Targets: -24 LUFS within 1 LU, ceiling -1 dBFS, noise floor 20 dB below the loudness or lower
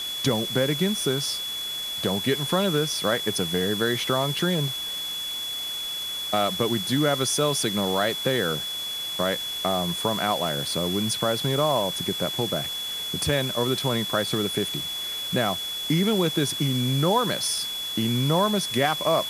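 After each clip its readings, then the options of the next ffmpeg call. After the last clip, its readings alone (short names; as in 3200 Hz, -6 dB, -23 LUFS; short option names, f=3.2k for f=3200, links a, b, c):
steady tone 3400 Hz; tone level -29 dBFS; noise floor -31 dBFS; noise floor target -45 dBFS; loudness -24.5 LUFS; peak -8.0 dBFS; loudness target -24.0 LUFS
-> -af "bandreject=f=3.4k:w=30"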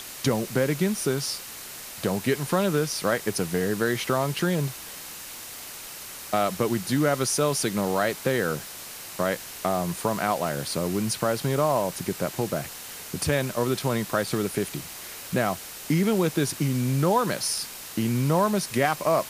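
steady tone none; noise floor -40 dBFS; noise floor target -46 dBFS
-> -af "afftdn=nr=6:nf=-40"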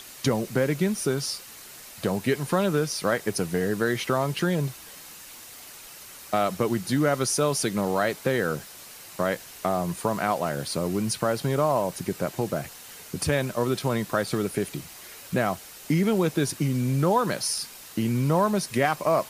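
noise floor -45 dBFS; noise floor target -46 dBFS
-> -af "afftdn=nr=6:nf=-45"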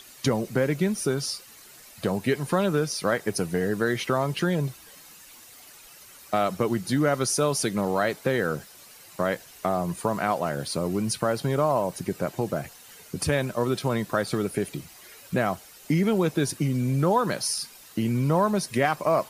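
noise floor -49 dBFS; loudness -26.0 LUFS; peak -9.5 dBFS; loudness target -24.0 LUFS
-> -af "volume=2dB"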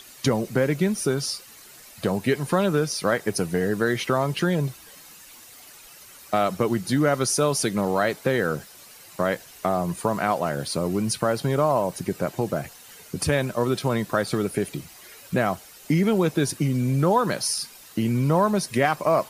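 loudness -24.0 LUFS; peak -7.5 dBFS; noise floor -47 dBFS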